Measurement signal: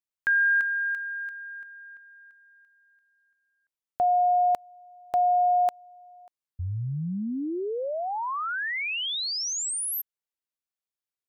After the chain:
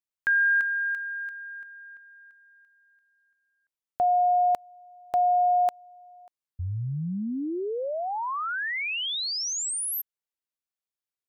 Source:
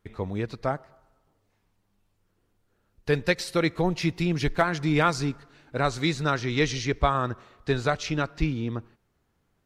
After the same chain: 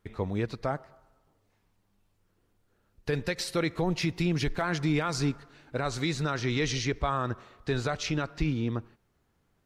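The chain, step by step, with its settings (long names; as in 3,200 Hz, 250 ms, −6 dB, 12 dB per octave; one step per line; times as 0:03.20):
brickwall limiter −17.5 dBFS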